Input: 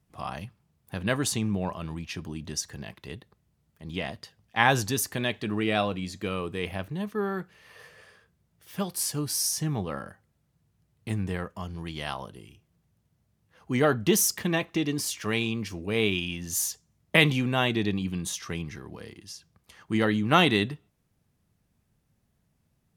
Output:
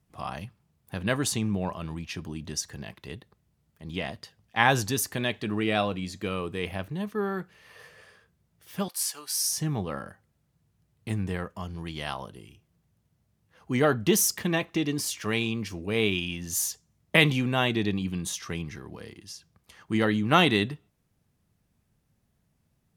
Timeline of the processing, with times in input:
0:08.88–0:09.49: high-pass filter 930 Hz

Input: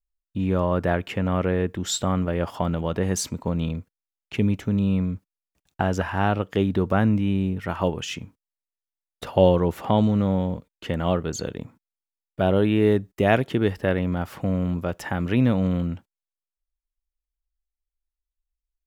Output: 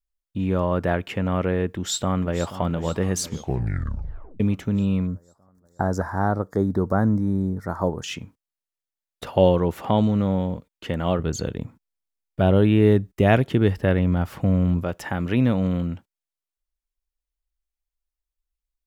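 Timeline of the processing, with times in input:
0:01.69–0:02.60: delay throw 480 ms, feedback 65%, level −13.5 dB
0:03.25: tape stop 1.15 s
0:05.07–0:08.04: Butterworth band-reject 2,800 Hz, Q 0.81
0:11.19–0:14.84: low-shelf EQ 160 Hz +9 dB

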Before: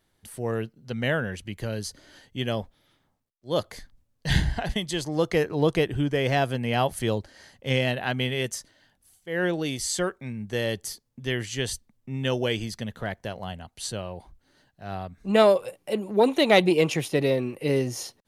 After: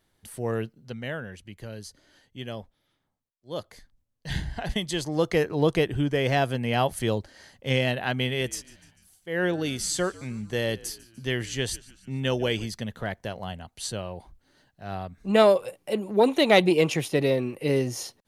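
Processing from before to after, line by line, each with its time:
0:00.77–0:04.73: duck −8 dB, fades 0.23 s
0:08.25–0:12.66: echo with shifted repeats 148 ms, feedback 54%, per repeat −76 Hz, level −21 dB

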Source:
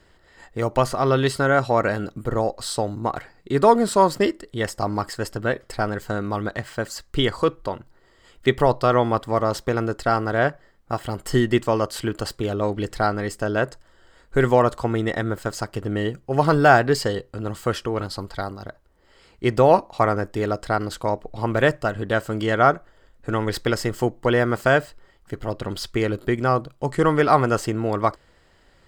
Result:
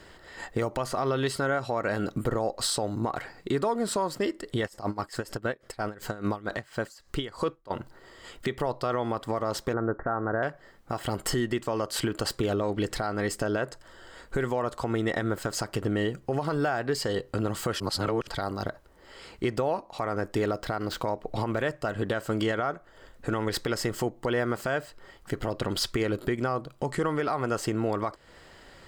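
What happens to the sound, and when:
0:04.66–0:07.70: tremolo with a sine in dB 8.2 Hz → 2.4 Hz, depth 24 dB
0:09.73–0:10.43: Butterworth low-pass 1,800 Hz 72 dB per octave
0:17.80–0:18.27: reverse
0:20.49–0:21.24: running median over 5 samples
whole clip: downward compressor 6 to 1, threshold −30 dBFS; low-shelf EQ 110 Hz −7 dB; brickwall limiter −25 dBFS; level +7.5 dB

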